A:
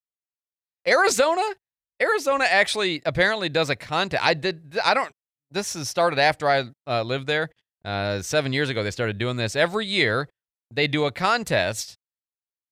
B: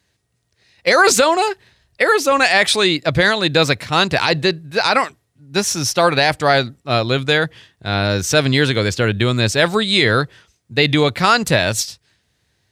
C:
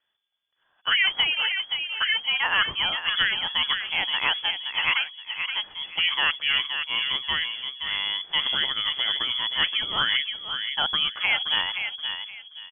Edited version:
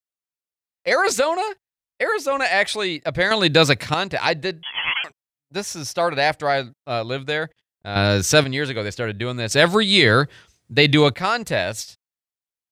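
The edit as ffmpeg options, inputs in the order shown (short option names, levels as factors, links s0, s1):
-filter_complex "[1:a]asplit=3[s0][s1][s2];[0:a]asplit=5[s3][s4][s5][s6][s7];[s3]atrim=end=3.312[s8];[s0]atrim=start=3.308:end=3.942[s9];[s4]atrim=start=3.938:end=4.632[s10];[2:a]atrim=start=4.628:end=5.042[s11];[s5]atrim=start=5.038:end=7.962[s12];[s1]atrim=start=7.958:end=8.442[s13];[s6]atrim=start=8.438:end=9.512[s14];[s2]atrim=start=9.508:end=11.142[s15];[s7]atrim=start=11.138[s16];[s8][s9]acrossfade=d=0.004:c1=hsin:c2=hsin[s17];[s17][s10]acrossfade=d=0.004:c1=hsin:c2=hsin[s18];[s18][s11]acrossfade=d=0.004:c1=hsin:c2=hsin[s19];[s19][s12]acrossfade=d=0.004:c1=hsin:c2=hsin[s20];[s20][s13]acrossfade=d=0.004:c1=hsin:c2=hsin[s21];[s21][s14]acrossfade=d=0.004:c1=hsin:c2=hsin[s22];[s22][s15]acrossfade=d=0.004:c1=hsin:c2=hsin[s23];[s23][s16]acrossfade=d=0.004:c1=hsin:c2=hsin"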